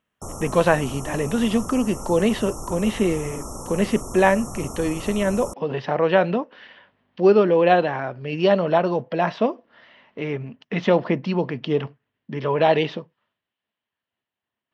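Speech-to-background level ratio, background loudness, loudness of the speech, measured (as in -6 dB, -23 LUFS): 13.0 dB, -35.0 LUFS, -22.0 LUFS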